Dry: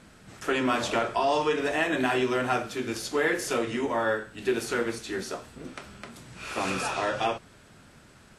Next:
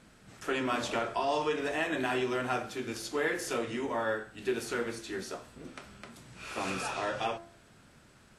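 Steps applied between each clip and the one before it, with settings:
hum removal 85.13 Hz, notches 25
level −5 dB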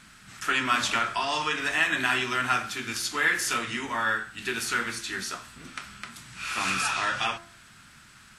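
drawn EQ curve 210 Hz 0 dB, 510 Hz −11 dB, 1,300 Hz +8 dB
level +2.5 dB

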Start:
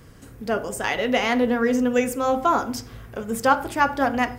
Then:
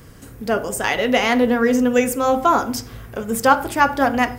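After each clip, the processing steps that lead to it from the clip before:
high-shelf EQ 9,600 Hz +6 dB
level +4 dB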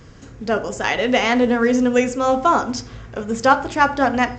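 mu-law 128 kbit/s 16,000 Hz

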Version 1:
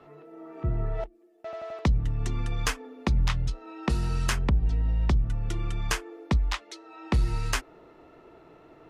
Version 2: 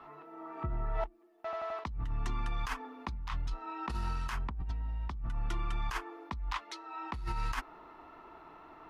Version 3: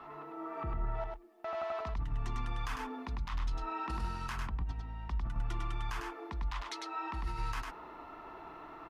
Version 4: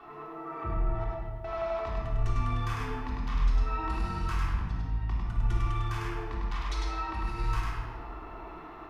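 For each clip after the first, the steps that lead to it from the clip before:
octave-band graphic EQ 125/500/1,000/8,000 Hz −9/−10/+11/−7 dB; compressor whose output falls as the input rises −30 dBFS, ratio −1; level −4 dB
brickwall limiter −32.5 dBFS, peak gain reduction 10.5 dB; on a send: single-tap delay 101 ms −3.5 dB; on the sum: level +2.5 dB
rectangular room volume 2,000 cubic metres, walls mixed, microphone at 3.5 metres; level −2 dB

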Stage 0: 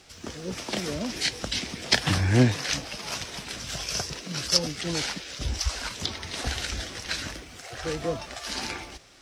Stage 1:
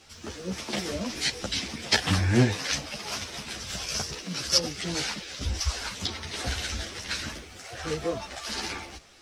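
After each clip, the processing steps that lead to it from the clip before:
string-ensemble chorus
level +2.5 dB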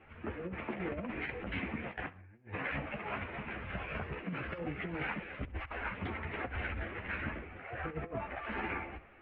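Butterworth low-pass 2,500 Hz 48 dB per octave
compressor whose output falls as the input rises −34 dBFS, ratio −0.5
flutter between parallel walls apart 11.4 metres, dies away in 0.21 s
level −4.5 dB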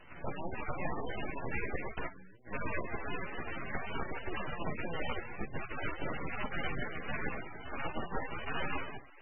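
ring modulation 1,800 Hz
full-wave rectification
level +9 dB
MP3 8 kbit/s 22,050 Hz

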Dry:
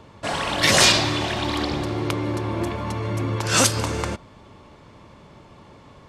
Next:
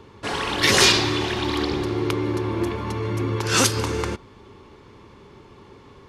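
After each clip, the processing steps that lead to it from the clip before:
thirty-one-band graphic EQ 160 Hz −5 dB, 400 Hz +9 dB, 630 Hz −11 dB, 8,000 Hz −5 dB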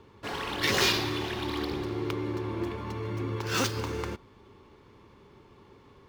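running median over 5 samples
level −8 dB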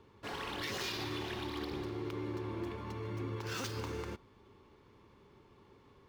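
brickwall limiter −23.5 dBFS, peak gain reduction 10.5 dB
level −6.5 dB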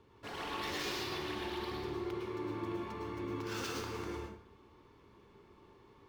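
dense smooth reverb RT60 0.61 s, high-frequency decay 0.65×, pre-delay 95 ms, DRR −1.5 dB
level −3 dB

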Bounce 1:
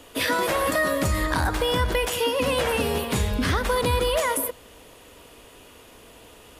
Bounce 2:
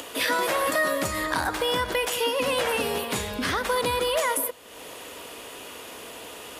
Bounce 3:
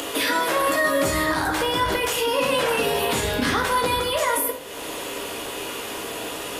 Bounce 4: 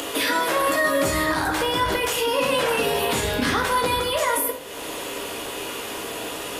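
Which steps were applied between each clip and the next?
high-pass filter 370 Hz 6 dB per octave; upward compression, threshold −30 dBFS
brickwall limiter −22.5 dBFS, peak gain reduction 11 dB; rectangular room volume 45 cubic metres, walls mixed, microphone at 0.59 metres; level +6.5 dB
loose part that buzzes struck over −29 dBFS, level −32 dBFS

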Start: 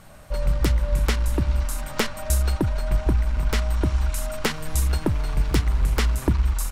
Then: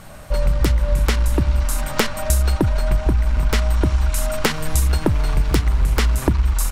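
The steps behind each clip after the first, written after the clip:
downward compressor 3 to 1, threshold −21 dBFS, peak gain reduction 6 dB
level +7.5 dB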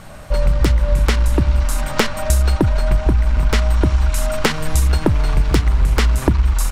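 high-shelf EQ 11,000 Hz −9 dB
level +2.5 dB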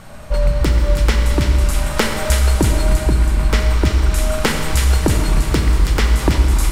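delay with a high-pass on its return 325 ms, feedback 49%, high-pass 1,900 Hz, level −3.5 dB
four-comb reverb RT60 2.5 s, combs from 28 ms, DRR 3 dB
level −1 dB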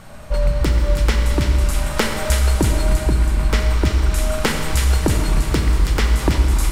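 bit-depth reduction 12 bits, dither none
level −2 dB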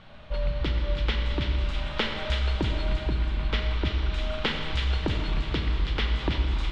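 transistor ladder low-pass 3,900 Hz, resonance 55%

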